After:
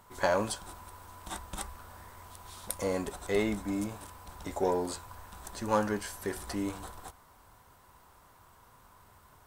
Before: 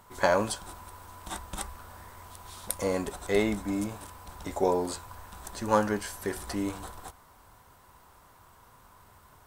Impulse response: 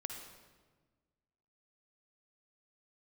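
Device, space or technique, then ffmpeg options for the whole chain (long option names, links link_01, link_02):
parallel distortion: -filter_complex "[0:a]asplit=2[link_01][link_02];[link_02]asoftclip=type=hard:threshold=-24dB,volume=-7dB[link_03];[link_01][link_03]amix=inputs=2:normalize=0,volume=-5.5dB"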